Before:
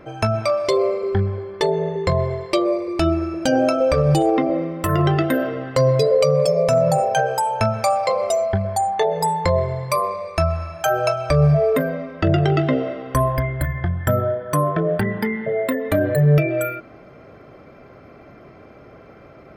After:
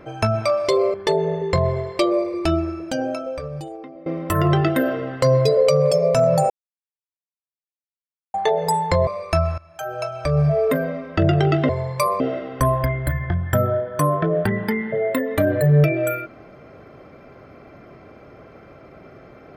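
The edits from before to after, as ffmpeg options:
-filter_complex "[0:a]asplit=9[a][b][c][d][e][f][g][h][i];[a]atrim=end=0.942[j];[b]atrim=start=1.478:end=4.6,asetpts=PTS-STARTPTS,afade=t=out:st=1.432:d=1.69:c=qua:silence=0.0944061[k];[c]atrim=start=4.6:end=7.04,asetpts=PTS-STARTPTS,afade=t=in:d=0.004:c=hsin:silence=0.0944061,afade=t=out:st=2.436:d=0.004:c=hsin[l];[d]atrim=start=7.04:end=8.88,asetpts=PTS-STARTPTS,volume=0[m];[e]atrim=start=8.88:end=9.612,asetpts=PTS-STARTPTS,afade=t=in:d=0.004:c=hsin[n];[f]atrim=start=10.118:end=10.63,asetpts=PTS-STARTPTS,afade=t=out:st=0.508:d=0.004:c=hsin:silence=0.105925[o];[g]atrim=start=10.63:end=12.742,asetpts=PTS-STARTPTS,afade=t=in:d=1.26:silence=0.105925[p];[h]atrim=start=9.608:end=10.122[q];[i]atrim=start=12.738[r];[k][l][m][n]concat=n=4:v=0:a=1[s];[j][s]acrossfade=d=0.004:c1=hsin:c2=hsin[t];[o][p]concat=n=2:v=0:a=1[u];[t][u]acrossfade=d=0.004:c1=hsin:c2=hsin[v];[v][q]acrossfade=d=0.004:c1=hsin:c2=hsin[w];[w][r]acrossfade=d=0.004:c1=hsin:c2=hsin"

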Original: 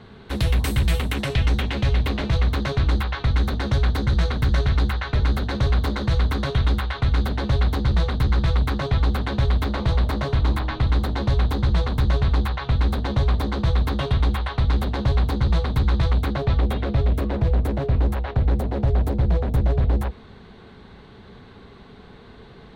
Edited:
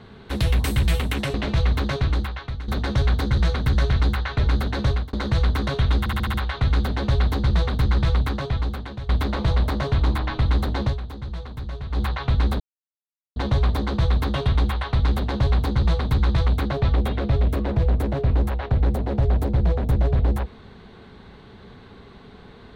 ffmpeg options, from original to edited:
-filter_complex "[0:a]asplit=13[a][b][c][d][e][f][g][h][i][j][k][l][m];[a]atrim=end=1.342[n];[b]atrim=start=2.098:end=3.44,asetpts=PTS-STARTPTS,afade=t=out:st=0.592:d=0.75:silence=0.158489[o];[c]atrim=start=3.44:end=5.89,asetpts=PTS-STARTPTS,afade=t=in:d=0.004:c=hsin:silence=0.158489,afade=t=out:st=2.2:d=0.25[p];[d]atrim=start=5.89:end=6.822,asetpts=PTS-STARTPTS,afade=t=in:d=0.004:c=hsin[q];[e]atrim=start=6.748:end=6.822[r];[f]atrim=start=6.748:end=6.822[s];[g]atrim=start=6.748:end=6.822[t];[h]atrim=start=6.748:end=6.822[u];[i]atrim=start=6.748:end=9.5,asetpts=PTS-STARTPTS,afade=t=out:st=1.792:d=0.96:silence=0.177828[v];[j]atrim=start=9.5:end=11.39,asetpts=PTS-STARTPTS,afade=t=in:d=0.004:c=hsin:silence=0.177828,afade=t=out:st=1.76:d=0.13:silence=0.251189[w];[k]atrim=start=11.39:end=12.31,asetpts=PTS-STARTPTS,volume=-12dB[x];[l]atrim=start=12.31:end=13.01,asetpts=PTS-STARTPTS,afade=t=in:d=0.13:silence=0.251189,afade=t=out:st=0.696:d=0.004:c=hsin,apad=pad_dur=0.76[y];[m]atrim=start=13.01,asetpts=PTS-STARTPTS,afade=t=in:d=0.004:c=hsin[z];[o][p][q]concat=n=3:v=0:a=1[aa];[n][aa]acrossfade=d=0.004:c1=hsin:c2=hsin[ab];[ab][r]acrossfade=d=0.004:c1=hsin:c2=hsin[ac];[ac][s]acrossfade=d=0.004:c1=hsin:c2=hsin[ad];[ad][t]acrossfade=d=0.004:c1=hsin:c2=hsin[ae];[ae][u]acrossfade=d=0.004:c1=hsin:c2=hsin[af];[v][w][x][y][z]concat=n=5:v=0:a=1[ag];[af][ag]acrossfade=d=0.004:c1=hsin:c2=hsin"

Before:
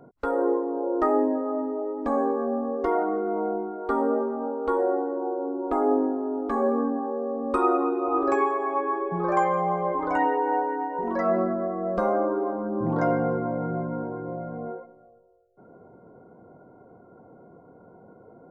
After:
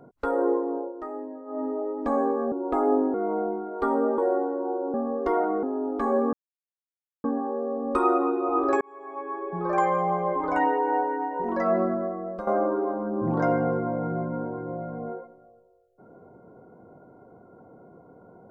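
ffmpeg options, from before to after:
-filter_complex "[0:a]asplit=11[a][b][c][d][e][f][g][h][i][j][k];[a]atrim=end=0.93,asetpts=PTS-STARTPTS,afade=t=out:st=0.74:d=0.19:silence=0.211349[l];[b]atrim=start=0.93:end=1.46,asetpts=PTS-STARTPTS,volume=-13.5dB[m];[c]atrim=start=1.46:end=2.522,asetpts=PTS-STARTPTS,afade=t=in:d=0.19:silence=0.211349[n];[d]atrim=start=5.508:end=6.132[o];[e]atrim=start=3.208:end=4.252[p];[f]atrim=start=4.748:end=5.512[q];[g]atrim=start=2.518:end=3.212[r];[h]atrim=start=6.128:end=6.83,asetpts=PTS-STARTPTS,afade=t=out:st=0.698:d=0.004:c=hsin,apad=pad_dur=0.91[s];[i]atrim=start=6.83:end=8.4,asetpts=PTS-STARTPTS,afade=t=in:d=0.004:c=hsin,afade=t=out:st=1.566:d=0.004:c=hsin[t];[j]atrim=start=8.4:end=12.06,asetpts=PTS-STARTPTS,afade=t=in:d=1.08,afade=t=out:st=3.16:d=0.5:silence=0.237137[u];[k]atrim=start=12.06,asetpts=PTS-STARTPTS,afade=t=in:d=0.004:c=hsin:silence=0.237137[v];[l][m][n]concat=n=3:v=0:a=1[w];[w][o]acrossfade=d=0.004:c1=hsin:c2=hsin[x];[x][p]acrossfade=d=0.004:c1=hsin:c2=hsin[y];[y][q]acrossfade=d=0.004:c1=hsin:c2=hsin[z];[z][r]acrossfade=d=0.004:c1=hsin:c2=hsin[aa];[s][t][u][v]concat=n=4:v=0:a=1[ab];[aa][ab]acrossfade=d=0.004:c1=hsin:c2=hsin"

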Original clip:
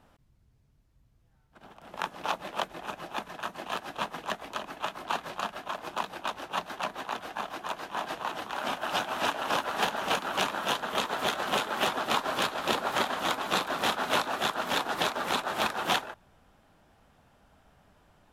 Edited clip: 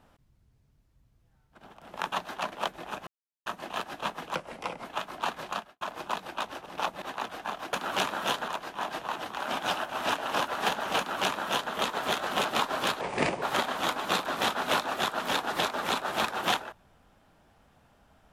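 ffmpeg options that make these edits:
-filter_complex "[0:a]asplit=17[a][b][c][d][e][f][g][h][i][j][k][l][m][n][o][p][q];[a]atrim=end=2.122[r];[b]atrim=start=6.528:end=6.932[s];[c]atrim=start=2.478:end=3.03,asetpts=PTS-STARTPTS,afade=t=out:st=0.548:d=0.004:c=hsin[t];[d]atrim=start=3.03:end=3.42,asetpts=PTS-STARTPTS,volume=0[u];[e]atrim=start=3.42:end=4.314,asetpts=PTS-STARTPTS,afade=t=in:d=0.004:c=hsin[v];[f]atrim=start=4.31:end=4.72,asetpts=PTS-STARTPTS,asetrate=36162,aresample=44100[w];[g]atrim=start=4.716:end=5.68,asetpts=PTS-STARTPTS,afade=t=out:st=0.704:d=0.26:c=qua[x];[h]atrim=start=5.68:end=6.532,asetpts=PTS-STARTPTS,afade=t=in:d=0.004:c=hsin[y];[i]atrim=start=2.118:end=2.482[z];[j]atrim=start=6.928:end=7.642[aa];[k]atrim=start=10.138:end=10.892[ab];[l]atrim=start=7.638:end=8.752[ac];[m]atrim=start=8.748:end=9.082,asetpts=PTS-STARTPTS,areverse[ad];[n]atrim=start=9.078:end=11.612[ae];[o]atrim=start=11.998:end=12.564[af];[p]atrim=start=12.56:end=12.84,asetpts=PTS-STARTPTS,asetrate=29988,aresample=44100[ag];[q]atrim=start=12.836[ah];[r][s]acrossfade=d=0.004:c1=hsin:c2=hsin[ai];[t][u][v]concat=n=3:v=0:a=1[aj];[ai][aj]acrossfade=d=0.004:c1=hsin:c2=hsin[ak];[ak][w]acrossfade=d=0.004:c1=hsin:c2=hsin[al];[x][y]concat=n=2:v=0:a=1[am];[al][am]acrossfade=d=0.004:c1=hsin:c2=hsin[an];[an][z]acrossfade=d=0.004:c1=hsin:c2=hsin[ao];[ao][aa]acrossfade=d=0.004:c1=hsin:c2=hsin[ap];[ap][ab]acrossfade=d=0.004:c1=hsin:c2=hsin[aq];[aq][ac]acrossfade=d=0.004:c1=hsin:c2=hsin[ar];[ar][ad]acrossfade=d=0.004:c1=hsin:c2=hsin[as];[as][ae]acrossfade=d=0.004:c1=hsin:c2=hsin[at];[at][af]acrossfade=d=0.004:c1=hsin:c2=hsin[au];[au][ag]acrossfade=d=0.004:c1=hsin:c2=hsin[av];[av][ah]acrossfade=d=0.004:c1=hsin:c2=hsin"

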